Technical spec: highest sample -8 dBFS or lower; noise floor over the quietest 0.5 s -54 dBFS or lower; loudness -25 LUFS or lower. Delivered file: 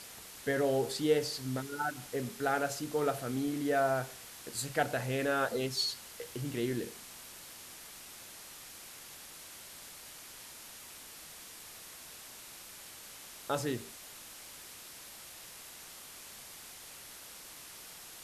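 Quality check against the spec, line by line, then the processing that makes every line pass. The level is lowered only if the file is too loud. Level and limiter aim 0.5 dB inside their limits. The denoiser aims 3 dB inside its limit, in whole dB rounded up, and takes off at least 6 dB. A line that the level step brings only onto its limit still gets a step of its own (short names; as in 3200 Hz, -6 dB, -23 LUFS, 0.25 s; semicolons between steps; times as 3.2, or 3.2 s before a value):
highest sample -16.0 dBFS: OK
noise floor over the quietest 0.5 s -50 dBFS: fail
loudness -37.5 LUFS: OK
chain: denoiser 7 dB, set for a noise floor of -50 dBFS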